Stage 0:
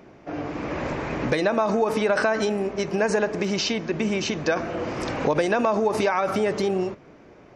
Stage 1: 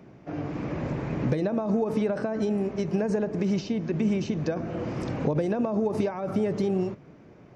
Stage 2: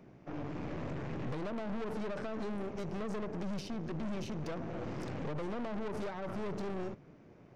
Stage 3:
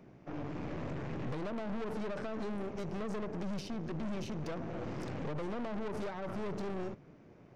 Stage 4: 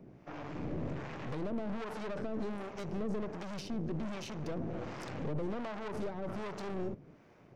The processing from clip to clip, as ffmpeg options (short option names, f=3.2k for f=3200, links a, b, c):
-filter_complex "[0:a]equalizer=f=140:t=o:w=1.8:g=10.5,acrossover=split=710[a][b];[b]acompressor=threshold=-35dB:ratio=6[c];[a][c]amix=inputs=2:normalize=0,volume=-6dB"
-af "aeval=exprs='(tanh(50.1*val(0)+0.75)-tanh(0.75))/50.1':c=same,volume=-2.5dB"
-af anull
-filter_complex "[0:a]acrossover=split=640[a][b];[a]aeval=exprs='val(0)*(1-0.7/2+0.7/2*cos(2*PI*1.3*n/s))':c=same[c];[b]aeval=exprs='val(0)*(1-0.7/2-0.7/2*cos(2*PI*1.3*n/s))':c=same[d];[c][d]amix=inputs=2:normalize=0,volume=3.5dB"